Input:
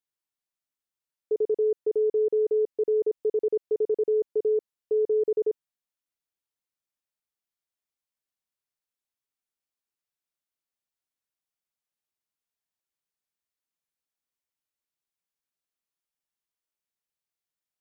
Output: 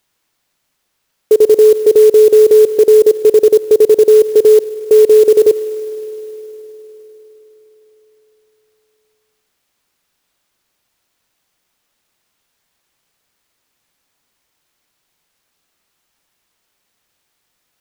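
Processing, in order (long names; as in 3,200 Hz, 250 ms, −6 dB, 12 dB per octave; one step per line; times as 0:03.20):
on a send at −17.5 dB: high-pass filter 370 Hz 6 dB per octave + convolution reverb RT60 4.5 s, pre-delay 51 ms
on the sum: boost into a limiter +25.5 dB
converter with an unsteady clock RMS 0.025 ms
level −1 dB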